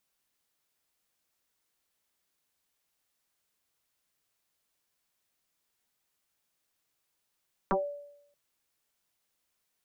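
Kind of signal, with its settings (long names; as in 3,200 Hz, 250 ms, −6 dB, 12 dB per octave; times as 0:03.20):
two-operator FM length 0.63 s, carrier 577 Hz, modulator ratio 0.34, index 4.9, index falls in 0.20 s exponential, decay 0.79 s, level −21.5 dB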